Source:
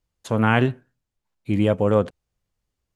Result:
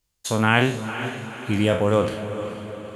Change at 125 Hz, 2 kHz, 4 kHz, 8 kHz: −1.0 dB, +4.0 dB, +7.5 dB, can't be measured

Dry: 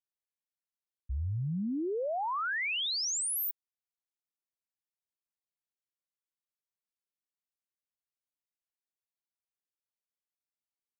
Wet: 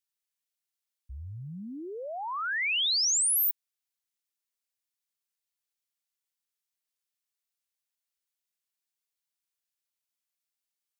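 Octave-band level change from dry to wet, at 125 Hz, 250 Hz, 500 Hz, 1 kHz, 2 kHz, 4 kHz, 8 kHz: −7.5, −7.0, −5.0, −1.0, +3.0, +6.0, +7.0 decibels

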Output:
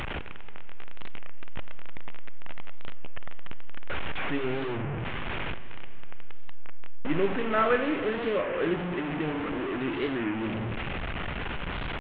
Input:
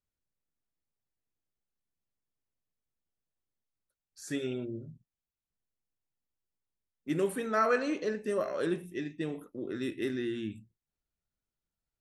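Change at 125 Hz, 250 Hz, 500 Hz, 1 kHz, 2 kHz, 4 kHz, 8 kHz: +10.0 dB, +4.5 dB, +4.0 dB, +5.5 dB, +8.0 dB, +9.5 dB, below −20 dB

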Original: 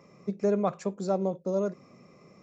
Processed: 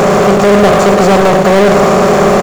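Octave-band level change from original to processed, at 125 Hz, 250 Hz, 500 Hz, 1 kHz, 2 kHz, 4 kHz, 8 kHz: +23.0 dB, +22.0 dB, +23.0 dB, +28.0 dB, +37.0 dB, +35.0 dB, can't be measured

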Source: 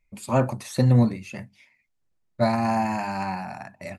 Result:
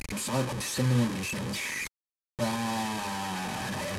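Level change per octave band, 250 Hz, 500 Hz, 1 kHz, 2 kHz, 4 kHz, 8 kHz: −6.0, −7.5, −6.5, +2.0, +6.5, +8.0 decibels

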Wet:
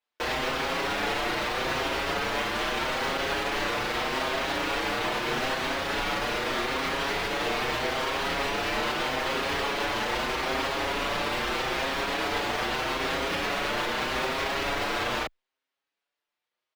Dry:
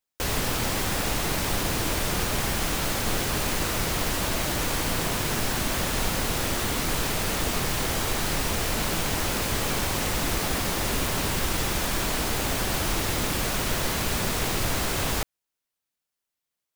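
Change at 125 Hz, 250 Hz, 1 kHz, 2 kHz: −11.5, −4.0, +2.5, +2.0 decibels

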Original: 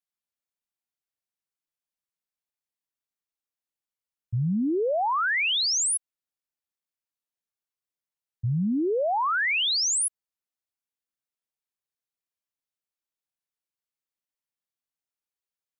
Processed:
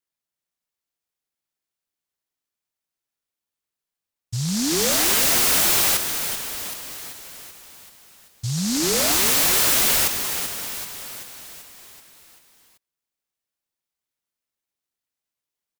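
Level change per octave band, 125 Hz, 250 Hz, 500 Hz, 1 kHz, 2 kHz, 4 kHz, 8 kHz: +0.5, +1.5, +0.5, −1.0, +1.5, +5.0, +8.0 decibels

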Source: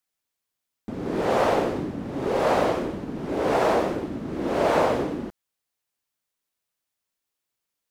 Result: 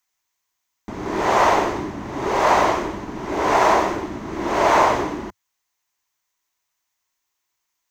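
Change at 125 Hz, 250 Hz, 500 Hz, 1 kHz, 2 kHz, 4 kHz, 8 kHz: +0.5, +1.0, +1.5, +8.5, +8.0, +6.0, +9.5 decibels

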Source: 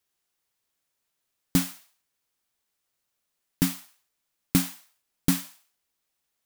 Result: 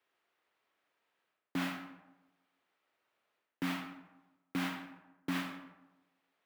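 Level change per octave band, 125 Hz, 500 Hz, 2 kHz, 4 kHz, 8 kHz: −14.5, −6.5, −1.0, −9.0, −21.5 decibels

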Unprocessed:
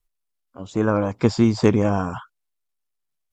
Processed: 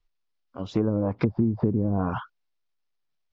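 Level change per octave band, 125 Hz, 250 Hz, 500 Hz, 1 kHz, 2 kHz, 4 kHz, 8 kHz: −3.0 dB, −4.5 dB, −7.5 dB, −7.0 dB, −10.5 dB, below −10 dB, can't be measured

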